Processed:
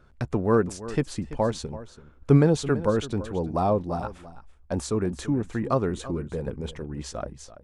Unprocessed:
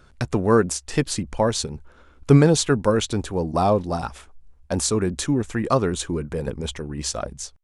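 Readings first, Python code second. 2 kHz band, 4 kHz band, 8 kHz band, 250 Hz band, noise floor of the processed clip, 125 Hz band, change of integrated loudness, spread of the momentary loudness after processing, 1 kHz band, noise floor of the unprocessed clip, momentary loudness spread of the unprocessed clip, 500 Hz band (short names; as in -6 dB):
-6.5 dB, -11.0 dB, -13.0 dB, -3.5 dB, -53 dBFS, -3.5 dB, -4.0 dB, 14 LU, -4.5 dB, -52 dBFS, 12 LU, -4.0 dB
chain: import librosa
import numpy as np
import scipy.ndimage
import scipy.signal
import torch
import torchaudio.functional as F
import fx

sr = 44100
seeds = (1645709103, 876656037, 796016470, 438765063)

y = fx.high_shelf(x, sr, hz=2600.0, db=-11.0)
y = y + 10.0 ** (-15.5 / 20.0) * np.pad(y, (int(334 * sr / 1000.0), 0))[:len(y)]
y = F.gain(torch.from_numpy(y), -3.5).numpy()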